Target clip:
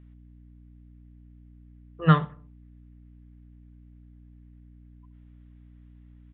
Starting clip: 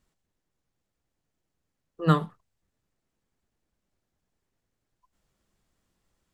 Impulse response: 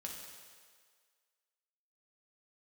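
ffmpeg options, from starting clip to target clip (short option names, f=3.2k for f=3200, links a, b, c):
-filter_complex "[0:a]equalizer=f=125:t=o:w=1:g=11,equalizer=f=250:t=o:w=1:g=-9,equalizer=f=2k:t=o:w=1:g=8,aeval=exprs='val(0)+0.00355*(sin(2*PI*60*n/s)+sin(2*PI*2*60*n/s)/2+sin(2*PI*3*60*n/s)/3+sin(2*PI*4*60*n/s)/4+sin(2*PI*5*60*n/s)/5)':c=same,asplit=2[a][b];[b]adelay=70,lowpass=f=1.4k:p=1,volume=-20.5dB,asplit=2[c][d];[d]adelay=70,lowpass=f=1.4k:p=1,volume=0.5,asplit=2[e][f];[f]adelay=70,lowpass=f=1.4k:p=1,volume=0.5,asplit=2[g][h];[h]adelay=70,lowpass=f=1.4k:p=1,volume=0.5[i];[c][e][g][i]amix=inputs=4:normalize=0[j];[a][j]amix=inputs=2:normalize=0,aresample=8000,aresample=44100"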